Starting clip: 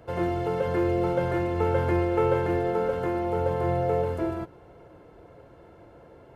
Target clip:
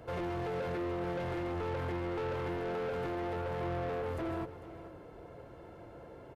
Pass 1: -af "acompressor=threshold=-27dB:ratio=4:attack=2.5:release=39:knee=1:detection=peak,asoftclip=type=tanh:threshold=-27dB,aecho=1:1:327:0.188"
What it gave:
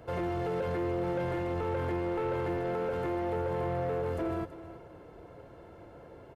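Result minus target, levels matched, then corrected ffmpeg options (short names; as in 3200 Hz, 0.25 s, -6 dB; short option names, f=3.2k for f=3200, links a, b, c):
echo 0.119 s early; soft clip: distortion -6 dB
-af "acompressor=threshold=-27dB:ratio=4:attack=2.5:release=39:knee=1:detection=peak,asoftclip=type=tanh:threshold=-33.5dB,aecho=1:1:446:0.188"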